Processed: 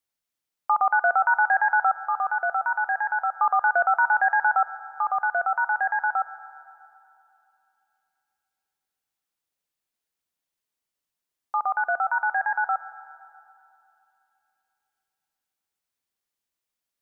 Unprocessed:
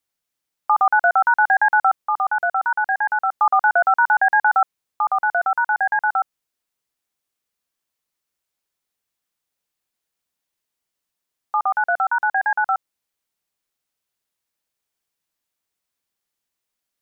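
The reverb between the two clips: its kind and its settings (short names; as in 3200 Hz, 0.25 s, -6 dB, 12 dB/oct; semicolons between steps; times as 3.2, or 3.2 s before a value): spring tank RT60 2.9 s, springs 39/46/58 ms, chirp 65 ms, DRR 15.5 dB; gain -4.5 dB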